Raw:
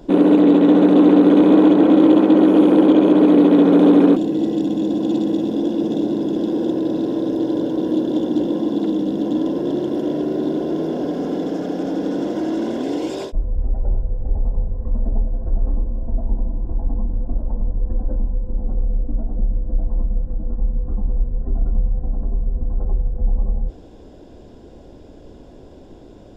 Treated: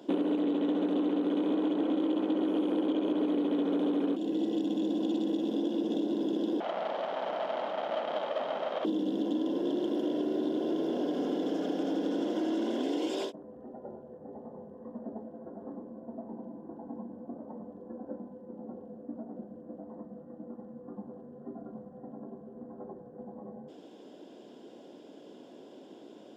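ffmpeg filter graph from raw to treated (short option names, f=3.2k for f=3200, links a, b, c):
-filter_complex "[0:a]asettb=1/sr,asplit=3[a][b][c];[a]atrim=end=6.604[d];[b]atrim=start=6.6:end=8.85,asetpts=PTS-STARTPTS,afade=t=in:d=0.004:c=qsin,afade=t=out:st=2.246:d=0.004:c=qsin,aeval=exprs='abs(val(0))':c=same,highpass=290,lowpass=3.3k[e];[c]atrim=start=8.846[f];[d][e]acrossfade=d=0.004:c1=hsin:c2=qsin[g];[g][f]acrossfade=d=0.004:c1=qsin:c2=hsin,highpass=f=210:w=0.5412,highpass=f=210:w=1.3066,equalizer=f=3.1k:t=o:w=0.3:g=8,acompressor=threshold=-21dB:ratio=6,volume=-6dB"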